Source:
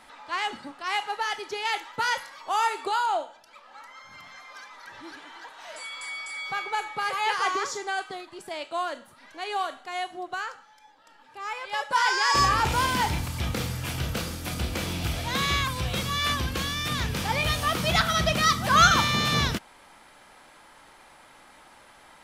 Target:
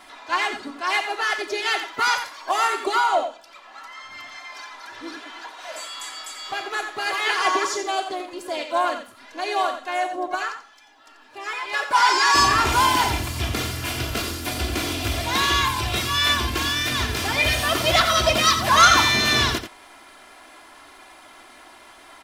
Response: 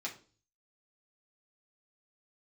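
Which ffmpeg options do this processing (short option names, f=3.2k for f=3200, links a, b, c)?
-filter_complex "[0:a]lowshelf=f=79:g=-9,aecho=1:1:2.9:0.98,asplit=3[a][b][c];[b]asetrate=37084,aresample=44100,atempo=1.18921,volume=-10dB[d];[c]asetrate=66075,aresample=44100,atempo=0.66742,volume=-15dB[e];[a][d][e]amix=inputs=3:normalize=0,acrossover=split=3100[f][g];[f]asoftclip=type=tanh:threshold=-11.5dB[h];[h][g]amix=inputs=2:normalize=0,asplit=2[i][j];[j]adelay=87.46,volume=-9dB,highshelf=f=4k:g=-1.97[k];[i][k]amix=inputs=2:normalize=0,volume=2.5dB"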